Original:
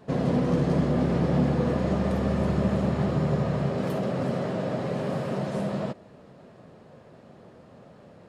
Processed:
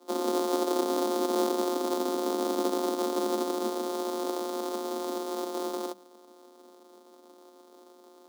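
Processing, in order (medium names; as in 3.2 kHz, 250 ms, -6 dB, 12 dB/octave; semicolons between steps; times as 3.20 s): sorted samples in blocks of 256 samples; high-order bell 1.9 kHz -13 dB 1.2 oct; frequency shift +190 Hz; trim -4 dB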